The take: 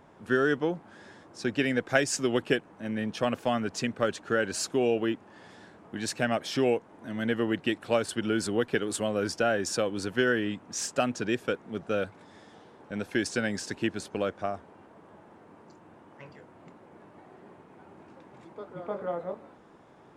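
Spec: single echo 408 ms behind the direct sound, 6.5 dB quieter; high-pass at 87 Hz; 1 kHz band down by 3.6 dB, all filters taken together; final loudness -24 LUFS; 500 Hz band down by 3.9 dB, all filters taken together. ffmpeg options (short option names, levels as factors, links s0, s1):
-af "highpass=87,equalizer=f=500:t=o:g=-4,equalizer=f=1000:t=o:g=-4,aecho=1:1:408:0.473,volume=2.37"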